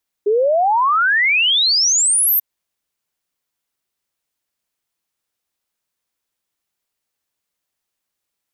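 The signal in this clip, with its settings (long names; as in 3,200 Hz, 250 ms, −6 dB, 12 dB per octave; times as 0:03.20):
exponential sine sweep 400 Hz → 14,000 Hz 2.14 s −12 dBFS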